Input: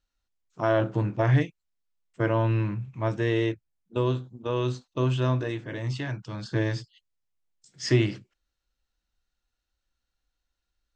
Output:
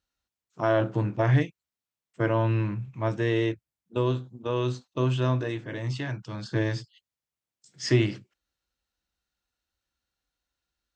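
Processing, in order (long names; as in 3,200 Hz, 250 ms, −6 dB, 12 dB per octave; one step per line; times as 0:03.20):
high-pass filter 68 Hz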